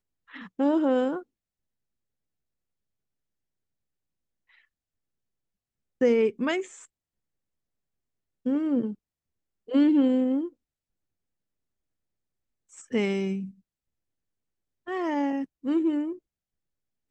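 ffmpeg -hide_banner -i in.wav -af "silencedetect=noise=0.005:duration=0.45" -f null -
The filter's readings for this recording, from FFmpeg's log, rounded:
silence_start: 1.23
silence_end: 6.01 | silence_duration: 4.78
silence_start: 6.85
silence_end: 8.46 | silence_duration: 1.60
silence_start: 8.95
silence_end: 9.68 | silence_duration: 0.74
silence_start: 10.49
silence_end: 12.72 | silence_duration: 2.23
silence_start: 13.51
silence_end: 14.87 | silence_duration: 1.36
silence_start: 16.18
silence_end: 17.11 | silence_duration: 0.93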